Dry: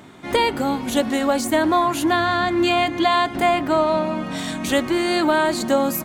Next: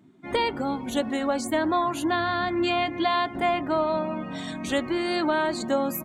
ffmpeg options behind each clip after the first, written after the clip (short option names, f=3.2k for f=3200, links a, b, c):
-af "afftdn=nr=17:nf=-35,volume=-6dB"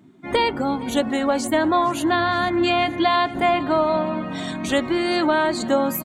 -af "aecho=1:1:466|932|1398|1864|2330:0.1|0.058|0.0336|0.0195|0.0113,volume=5dB"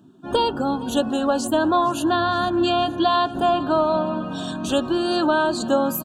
-af "asuperstop=centerf=2100:order=8:qfactor=2.4"